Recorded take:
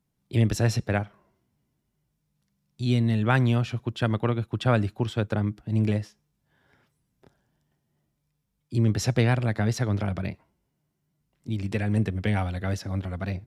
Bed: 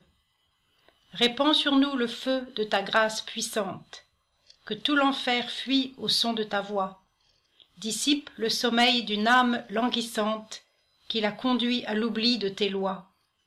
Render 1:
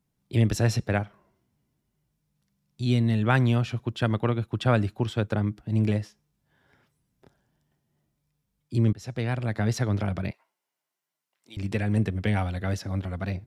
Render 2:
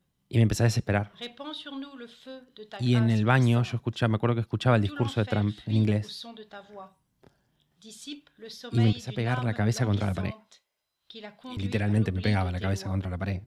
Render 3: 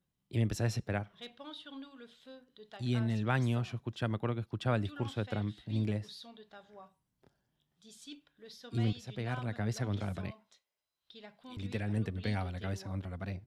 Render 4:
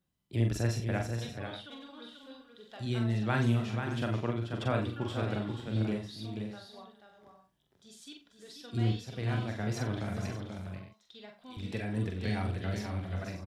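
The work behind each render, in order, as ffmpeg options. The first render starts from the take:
ffmpeg -i in.wav -filter_complex "[0:a]asettb=1/sr,asplit=3[link_01][link_02][link_03];[link_01]atrim=end=10.314[link_04];[link_02]atrim=start=10.31:end=11.57,asetpts=PTS-STARTPTS,afade=type=in:duration=0.004:curve=qsin,afade=type=out:start_time=1.256:duration=0.004:curve=qsin,highpass=810[link_05];[link_03]atrim=start=11.566[link_06];[link_04][link_05]acrossfade=duration=0.004:curve1=hsin:curve2=qsin[link_07];[link_07][link_06]acrossfade=duration=0.004:curve1=qsin:curve2=hsin,asplit=2[link_08][link_09];[link_08]atrim=end=8.93,asetpts=PTS-STARTPTS,afade=type=out:start_time=8.926:duration=0.004:curve=hsin:silence=0.0841395[link_10];[link_09]atrim=start=8.93,asetpts=PTS-STARTPTS,afade=type=in:duration=0.78:silence=0.0841395[link_11];[link_10][link_11]concat=n=2:v=0:a=1" out.wav
ffmpeg -i in.wav -i bed.wav -filter_complex "[1:a]volume=-16dB[link_01];[0:a][link_01]amix=inputs=2:normalize=0" out.wav
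ffmpeg -i in.wav -af "volume=-9dB" out.wav
ffmpeg -i in.wav -filter_complex "[0:a]asplit=2[link_01][link_02];[link_02]adelay=43,volume=-5.5dB[link_03];[link_01][link_03]amix=inputs=2:normalize=0,asplit=2[link_04][link_05];[link_05]aecho=0:1:46|400|486|581:0.355|0.106|0.473|0.237[link_06];[link_04][link_06]amix=inputs=2:normalize=0" out.wav

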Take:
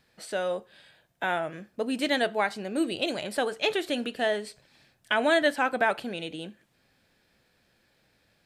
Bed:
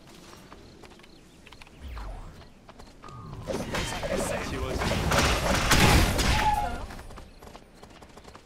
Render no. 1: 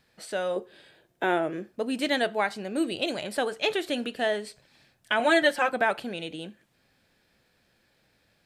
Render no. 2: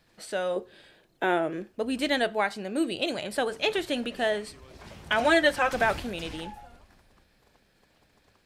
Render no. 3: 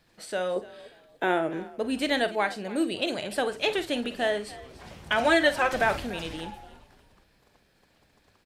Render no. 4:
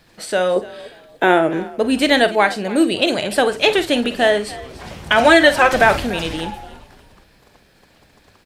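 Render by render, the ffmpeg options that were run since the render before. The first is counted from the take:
ffmpeg -i in.wav -filter_complex "[0:a]asettb=1/sr,asplit=3[link_01][link_02][link_03];[link_01]atrim=end=0.564[link_04];[link_02]atrim=start=0.56:end=1.72,asetpts=PTS-STARTPTS,afade=type=in:duration=0.004:curve=qsin,afade=type=out:start_time=1.156:duration=0.004:curve=qsin,equalizer=frequency=370:width_type=o:width=0.77:gain=13.5[link_05];[link_03]atrim=start=1.716[link_06];[link_04][link_05]acrossfade=duration=0.004:curve1=hsin:curve2=qsin[link_07];[link_07][link_06]acrossfade=duration=0.004:curve1=qsin:curve2=hsin,asettb=1/sr,asplit=3[link_08][link_09][link_10];[link_08]atrim=end=5.194[link_11];[link_09]atrim=start=5.19:end=5.7,asetpts=PTS-STARTPTS,afade=type=in:duration=0.004:curve=qsin,afade=type=out:start_time=0.506:duration=0.004:curve=qsin,aecho=1:1:5.6:0.85,atrim=end_sample=22491[link_12];[link_10]atrim=start=5.696[link_13];[link_11][link_12]acrossfade=duration=0.004:curve1=hsin:curve2=qsin[link_14];[link_14][link_13]acrossfade=duration=0.004:curve1=qsin:curve2=hsin" out.wav
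ffmpeg -i in.wav -i bed.wav -filter_complex "[1:a]volume=-19dB[link_01];[0:a][link_01]amix=inputs=2:normalize=0" out.wav
ffmpeg -i in.wav -filter_complex "[0:a]asplit=2[link_01][link_02];[link_02]adelay=49,volume=-13dB[link_03];[link_01][link_03]amix=inputs=2:normalize=0,asplit=4[link_04][link_05][link_06][link_07];[link_05]adelay=290,afreqshift=44,volume=-19dB[link_08];[link_06]adelay=580,afreqshift=88,volume=-29.5dB[link_09];[link_07]adelay=870,afreqshift=132,volume=-39.9dB[link_10];[link_04][link_08][link_09][link_10]amix=inputs=4:normalize=0" out.wav
ffmpeg -i in.wav -af "volume=11.5dB,alimiter=limit=-1dB:level=0:latency=1" out.wav

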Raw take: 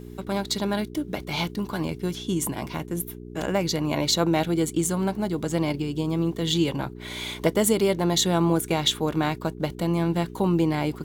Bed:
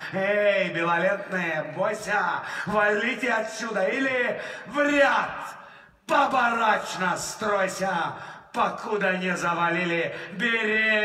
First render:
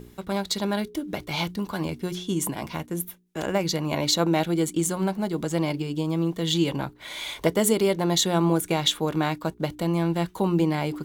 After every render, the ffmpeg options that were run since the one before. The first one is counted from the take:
ffmpeg -i in.wav -af "bandreject=frequency=60:width_type=h:width=4,bandreject=frequency=120:width_type=h:width=4,bandreject=frequency=180:width_type=h:width=4,bandreject=frequency=240:width_type=h:width=4,bandreject=frequency=300:width_type=h:width=4,bandreject=frequency=360:width_type=h:width=4,bandreject=frequency=420:width_type=h:width=4" out.wav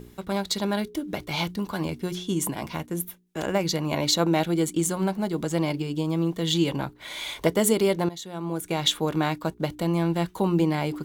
ffmpeg -i in.wav -filter_complex "[0:a]asplit=2[link_01][link_02];[link_01]atrim=end=8.09,asetpts=PTS-STARTPTS,afade=type=out:start_time=8.086:duration=0.004:curve=hsin:silence=0.141254[link_03];[link_02]atrim=start=8.09,asetpts=PTS-STARTPTS,afade=type=in:duration=0.79:curve=qua:silence=0.141254[link_04];[link_03][link_04]concat=n=2:v=0:a=1" out.wav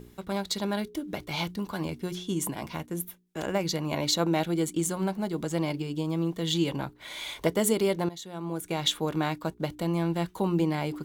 ffmpeg -i in.wav -af "volume=-3.5dB" out.wav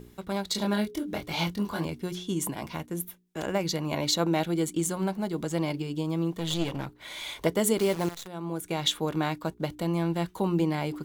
ffmpeg -i in.wav -filter_complex "[0:a]asettb=1/sr,asplit=3[link_01][link_02][link_03];[link_01]atrim=end=0.524[link_04];[link_02]atrim=start=0.52:end=1.85,asetpts=PTS-STARTPTS,afade=type=in:duration=0.004:curve=qsin,afade=type=out:start_time=1.326:duration=0.004:curve=qsin,asplit=2[link_05][link_06];[link_06]adelay=24,volume=-2.5dB[link_07];[link_05][link_07]amix=inputs=2:normalize=0,atrim=end_sample=58653[link_08];[link_03]atrim=start=1.846[link_09];[link_04][link_08]acrossfade=duration=0.004:curve1=hsin:curve2=qsin[link_10];[link_10][link_09]acrossfade=duration=0.004:curve1=qsin:curve2=hsin,asettb=1/sr,asplit=3[link_11][link_12][link_13];[link_11]atrim=end=6.324[link_14];[link_12]atrim=start=6.32:end=7.24,asetpts=PTS-STARTPTS,afade=type=in:duration=0.004:curve=qsin,afade=type=out:start_time=0.916:duration=0.004:curve=qsin,aeval=exprs='clip(val(0),-1,0.0188)':channel_layout=same[link_15];[link_13]atrim=start=7.236[link_16];[link_14][link_15]acrossfade=duration=0.004:curve1=hsin:curve2=qsin[link_17];[link_17][link_16]acrossfade=duration=0.004:curve1=qsin:curve2=hsin,asplit=3[link_18][link_19][link_20];[link_18]afade=type=out:start_time=7.77:duration=0.02[link_21];[link_19]acrusher=bits=7:dc=4:mix=0:aa=0.000001,afade=type=in:start_time=7.77:duration=0.02,afade=type=out:start_time=8.26:duration=0.02[link_22];[link_20]afade=type=in:start_time=8.26:duration=0.02[link_23];[link_21][link_22][link_23]amix=inputs=3:normalize=0" out.wav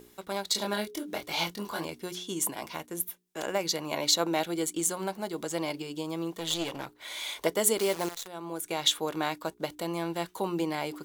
ffmpeg -i in.wav -af "bass=frequency=250:gain=-14,treble=frequency=4000:gain=4" out.wav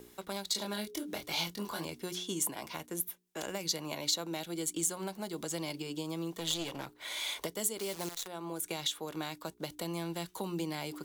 ffmpeg -i in.wav -filter_complex "[0:a]alimiter=limit=-18dB:level=0:latency=1:release=468,acrossover=split=230|3000[link_01][link_02][link_03];[link_02]acompressor=threshold=-38dB:ratio=6[link_04];[link_01][link_04][link_03]amix=inputs=3:normalize=0" out.wav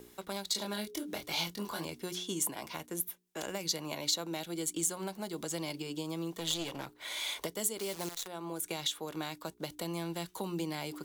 ffmpeg -i in.wav -af anull out.wav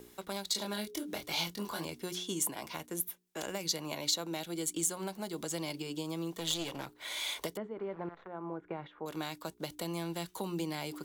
ffmpeg -i in.wav -filter_complex "[0:a]asettb=1/sr,asplit=3[link_01][link_02][link_03];[link_01]atrim=end=7.574[link_04];[link_02]atrim=start=7.57:end=9.06,asetpts=PTS-STARTPTS,afade=type=in:duration=0.004:curve=qsin,afade=type=out:start_time=1.486:duration=0.004:curve=qsin,lowpass=frequency=1700:width=0.5412,lowpass=frequency=1700:width=1.3066[link_05];[link_03]atrim=start=9.056[link_06];[link_04][link_05]acrossfade=duration=0.004:curve1=hsin:curve2=qsin[link_07];[link_07][link_06]acrossfade=duration=0.004:curve1=qsin:curve2=hsin" out.wav

